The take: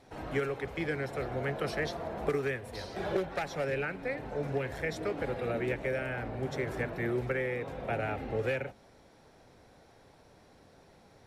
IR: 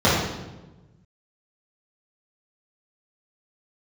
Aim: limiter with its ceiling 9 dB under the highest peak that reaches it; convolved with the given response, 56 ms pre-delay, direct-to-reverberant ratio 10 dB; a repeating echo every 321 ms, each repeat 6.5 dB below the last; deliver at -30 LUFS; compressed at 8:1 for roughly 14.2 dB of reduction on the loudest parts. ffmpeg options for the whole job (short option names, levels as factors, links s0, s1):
-filter_complex "[0:a]acompressor=threshold=0.00891:ratio=8,alimiter=level_in=5.31:limit=0.0631:level=0:latency=1,volume=0.188,aecho=1:1:321|642|963|1284|1605|1926:0.473|0.222|0.105|0.0491|0.0231|0.0109,asplit=2[s0][s1];[1:a]atrim=start_sample=2205,adelay=56[s2];[s1][s2]afir=irnorm=-1:irlink=0,volume=0.0237[s3];[s0][s3]amix=inputs=2:normalize=0,volume=5.96"